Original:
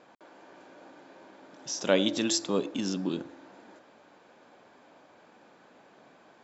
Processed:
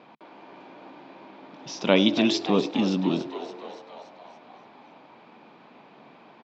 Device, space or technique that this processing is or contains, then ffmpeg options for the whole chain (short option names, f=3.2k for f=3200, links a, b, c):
frequency-shifting delay pedal into a guitar cabinet: -filter_complex "[0:a]asplit=8[a][b][c][d][e][f][g][h];[b]adelay=285,afreqshift=87,volume=-12dB[i];[c]adelay=570,afreqshift=174,volume=-16.3dB[j];[d]adelay=855,afreqshift=261,volume=-20.6dB[k];[e]adelay=1140,afreqshift=348,volume=-24.9dB[l];[f]adelay=1425,afreqshift=435,volume=-29.2dB[m];[g]adelay=1710,afreqshift=522,volume=-33.5dB[n];[h]adelay=1995,afreqshift=609,volume=-37.8dB[o];[a][i][j][k][l][m][n][o]amix=inputs=8:normalize=0,highpass=95,equalizer=f=150:t=q:w=4:g=4,equalizer=f=220:t=q:w=4:g=4,equalizer=f=540:t=q:w=4:g=-4,equalizer=f=960:t=q:w=4:g=3,equalizer=f=1.6k:t=q:w=4:g=-7,equalizer=f=2.4k:t=q:w=4:g=4,lowpass=f=4.4k:w=0.5412,lowpass=f=4.4k:w=1.3066,volume=5.5dB"